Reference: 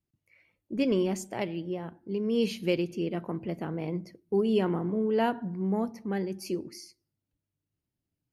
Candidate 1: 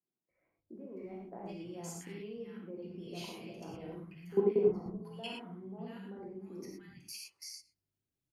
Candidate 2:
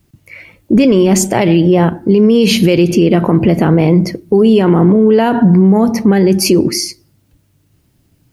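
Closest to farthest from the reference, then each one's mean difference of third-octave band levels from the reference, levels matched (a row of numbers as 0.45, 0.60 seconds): 2, 1; 3.5, 8.5 decibels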